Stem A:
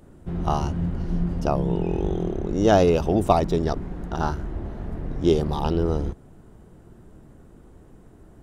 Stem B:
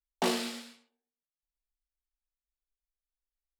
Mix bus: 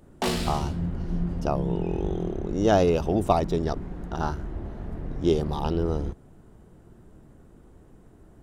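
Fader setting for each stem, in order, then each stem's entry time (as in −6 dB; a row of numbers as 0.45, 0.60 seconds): −3.0, +2.0 decibels; 0.00, 0.00 seconds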